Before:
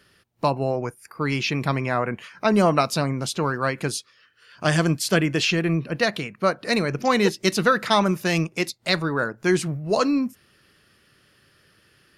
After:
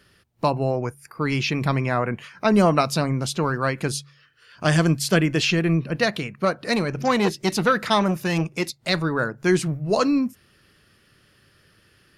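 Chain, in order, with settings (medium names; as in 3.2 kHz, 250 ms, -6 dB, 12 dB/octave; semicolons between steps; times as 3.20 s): bass shelf 130 Hz +7 dB; de-hum 70.81 Hz, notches 2; 6.45–8.95 s: transformer saturation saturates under 710 Hz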